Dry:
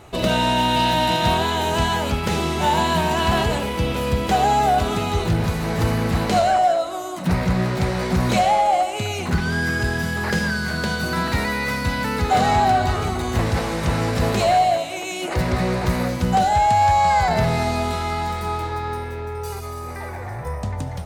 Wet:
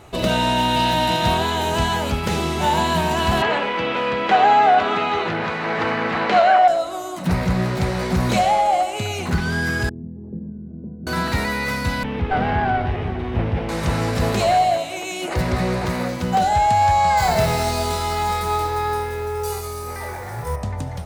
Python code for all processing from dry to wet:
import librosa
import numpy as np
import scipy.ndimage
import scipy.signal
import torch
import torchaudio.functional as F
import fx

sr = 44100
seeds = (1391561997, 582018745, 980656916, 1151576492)

y = fx.chain(x, sr, fx.bandpass_edges(low_hz=260.0, high_hz=3300.0),
    fx.peak_eq(hz=1700.0, db=8.0, octaves=2.3), at=(3.42, 6.68))
y = fx.chain(y, sr, fx.ladder_lowpass(hz=350.0, resonance_pct=40),
    fx.low_shelf(hz=150.0, db=-4.5), at=(9.89, 11.07))
y = fx.chain(y, sr, fx.lower_of_two(delay_ms=0.33),
    fx.air_absorb(metres=410.0), at=(12.03, 13.69))
y = fx.chain(y, sr, fx.highpass(hz=150.0, slope=6),
    fx.resample_linear(factor=2), at=(15.86, 16.42))
y = fx.chain(y, sr, fx.bass_treble(bass_db=-1, treble_db=6),
    fx.mod_noise(seeds[0], snr_db=21),
    fx.room_flutter(wall_m=4.5, rt60_s=0.25), at=(17.17, 20.56))